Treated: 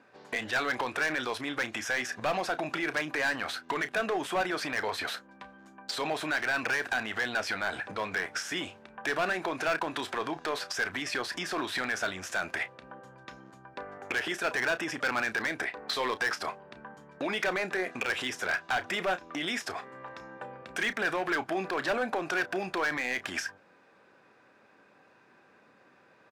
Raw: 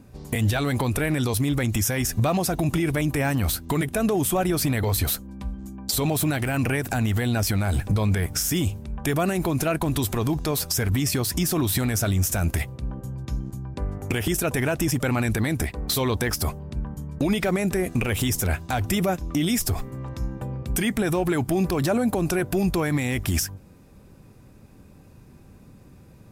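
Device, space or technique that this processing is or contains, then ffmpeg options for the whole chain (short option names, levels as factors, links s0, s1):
megaphone: -filter_complex "[0:a]highpass=590,lowpass=3300,equalizer=f=1600:t=o:w=0.43:g=7.5,asoftclip=type=hard:threshold=0.0631,asplit=2[s0][s1];[s1]adelay=32,volume=0.224[s2];[s0][s2]amix=inputs=2:normalize=0"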